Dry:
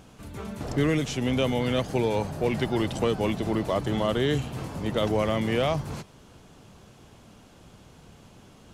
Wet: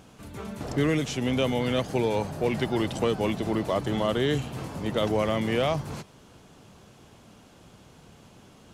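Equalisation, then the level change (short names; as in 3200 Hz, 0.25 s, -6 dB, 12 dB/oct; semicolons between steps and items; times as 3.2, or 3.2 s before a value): low shelf 62 Hz -7.5 dB; 0.0 dB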